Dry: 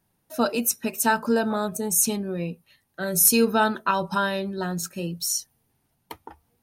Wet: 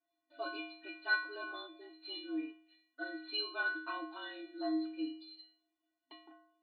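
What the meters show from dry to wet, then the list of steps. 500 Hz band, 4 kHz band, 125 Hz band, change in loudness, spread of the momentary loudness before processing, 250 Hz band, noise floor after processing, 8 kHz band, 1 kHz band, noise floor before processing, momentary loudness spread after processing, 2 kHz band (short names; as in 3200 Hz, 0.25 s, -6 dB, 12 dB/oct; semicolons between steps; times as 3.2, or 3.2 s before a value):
-20.0 dB, -9.0 dB, under -40 dB, -16.0 dB, 13 LU, -15.0 dB, under -85 dBFS, under -40 dB, -19.0 dB, -72 dBFS, 18 LU, -7.0 dB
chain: metallic resonator 360 Hz, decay 0.71 s, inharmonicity 0.008; frequency shift -44 Hz; FFT band-pass 260–4700 Hz; gain +9 dB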